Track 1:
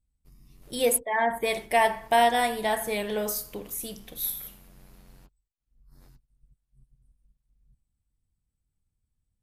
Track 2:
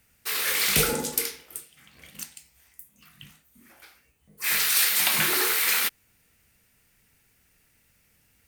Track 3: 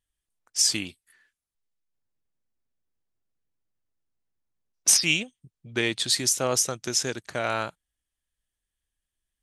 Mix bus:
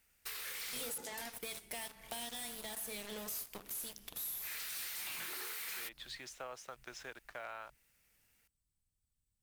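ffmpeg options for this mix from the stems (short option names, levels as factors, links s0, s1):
-filter_complex "[0:a]highshelf=f=2400:g=11,acrossover=split=290|3000[s0][s1][s2];[s1]acompressor=threshold=0.0251:ratio=10[s3];[s0][s3][s2]amix=inputs=3:normalize=0,aeval=exprs='0.0473*(cos(1*acos(clip(val(0)/0.0473,-1,1)))-cos(1*PI/2))+0.0211*(cos(3*acos(clip(val(0)/0.0473,-1,1)))-cos(3*PI/2))':c=same,volume=1.12[s4];[1:a]lowshelf=f=260:g=-11,volume=0.398[s5];[2:a]acrossover=split=580 3000:gain=0.141 1 0.0794[s6][s7][s8];[s6][s7][s8]amix=inputs=3:normalize=0,acrusher=bits=7:mix=0:aa=0.5,volume=0.316[s9];[s4][s5][s9]amix=inputs=3:normalize=0,asoftclip=type=hard:threshold=0.0376,acompressor=threshold=0.00794:ratio=6"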